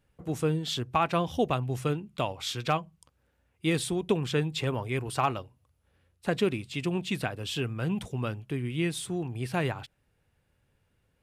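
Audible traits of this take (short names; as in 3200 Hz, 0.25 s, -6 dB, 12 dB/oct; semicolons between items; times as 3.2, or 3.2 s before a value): noise floor -73 dBFS; spectral tilt -5.5 dB/oct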